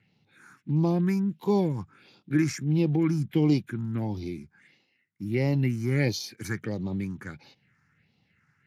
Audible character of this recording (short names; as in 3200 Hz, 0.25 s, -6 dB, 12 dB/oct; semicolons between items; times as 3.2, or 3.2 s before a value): phasing stages 4, 1.5 Hz, lowest notch 570–1600 Hz; Speex